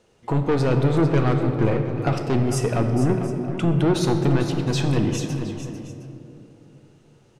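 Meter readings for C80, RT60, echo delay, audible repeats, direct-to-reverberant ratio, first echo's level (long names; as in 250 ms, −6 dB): 5.0 dB, 2.9 s, 449 ms, 2, 3.5 dB, −10.5 dB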